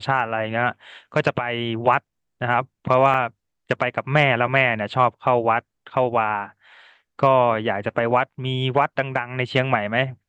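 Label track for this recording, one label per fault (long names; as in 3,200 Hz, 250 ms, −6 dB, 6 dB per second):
3.140000	3.140000	drop-out 2.3 ms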